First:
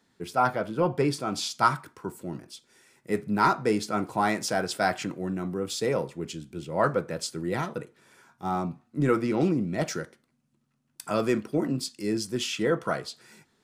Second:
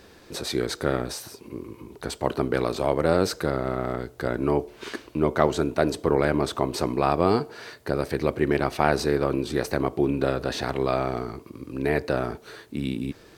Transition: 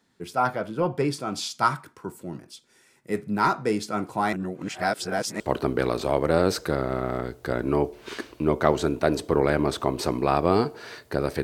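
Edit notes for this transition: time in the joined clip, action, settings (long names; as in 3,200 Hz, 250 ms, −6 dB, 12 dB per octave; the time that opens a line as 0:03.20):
first
0:04.33–0:05.40: reverse
0:05.40: continue with second from 0:02.15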